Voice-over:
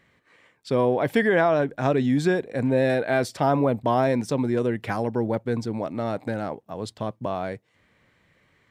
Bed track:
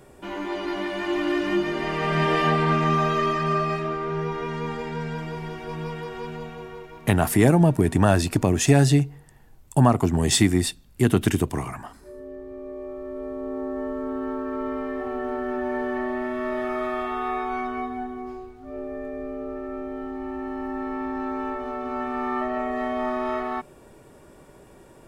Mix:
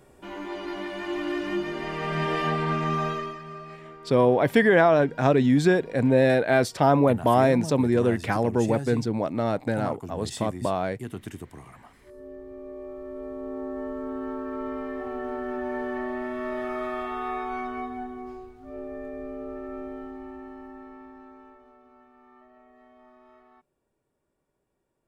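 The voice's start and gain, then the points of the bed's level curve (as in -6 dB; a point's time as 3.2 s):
3.40 s, +2.0 dB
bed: 3.09 s -5 dB
3.44 s -17 dB
11.59 s -17 dB
12.25 s -3.5 dB
19.86 s -3.5 dB
22.13 s -28.5 dB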